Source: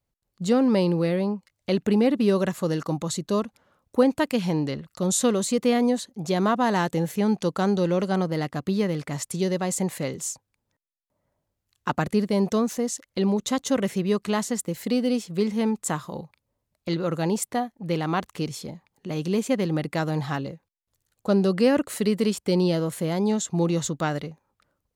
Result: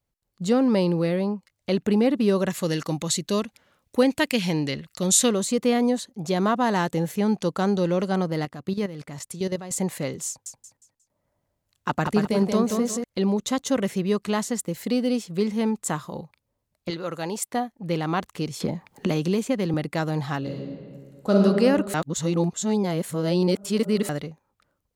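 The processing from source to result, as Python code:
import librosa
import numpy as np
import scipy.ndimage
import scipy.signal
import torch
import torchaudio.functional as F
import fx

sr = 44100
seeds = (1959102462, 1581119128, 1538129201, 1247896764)

y = fx.high_shelf_res(x, sr, hz=1600.0, db=6.0, q=1.5, at=(2.5, 5.29))
y = fx.level_steps(y, sr, step_db=12, at=(8.45, 9.71))
y = fx.echo_feedback(y, sr, ms=179, feedback_pct=33, wet_db=-4.5, at=(10.28, 13.04))
y = fx.low_shelf(y, sr, hz=360.0, db=-11.0, at=(16.9, 17.54))
y = fx.band_squash(y, sr, depth_pct=100, at=(18.6, 19.74))
y = fx.reverb_throw(y, sr, start_s=20.38, length_s=0.99, rt60_s=2.1, drr_db=-2.0)
y = fx.edit(y, sr, fx.reverse_span(start_s=21.94, length_s=2.15), tone=tone)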